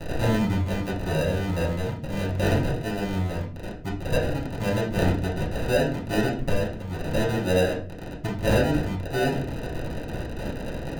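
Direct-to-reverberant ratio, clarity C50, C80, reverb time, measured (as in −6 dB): −6.0 dB, 7.5 dB, 12.5 dB, 0.45 s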